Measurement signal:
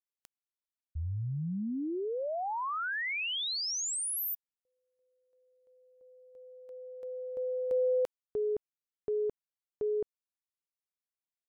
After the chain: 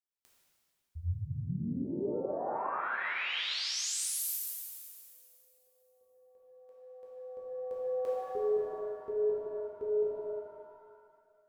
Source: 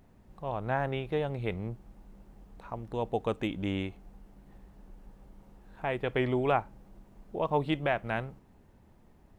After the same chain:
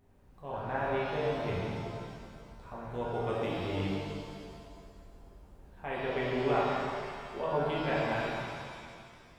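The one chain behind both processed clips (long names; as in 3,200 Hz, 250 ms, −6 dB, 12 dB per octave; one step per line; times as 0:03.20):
reverb with rising layers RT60 2.1 s, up +7 semitones, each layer −8 dB, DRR −6.5 dB
level −8.5 dB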